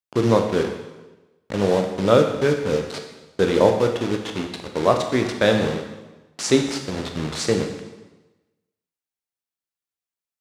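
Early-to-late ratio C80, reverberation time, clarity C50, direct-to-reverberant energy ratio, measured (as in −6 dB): 8.0 dB, 1.2 s, 6.5 dB, 3.5 dB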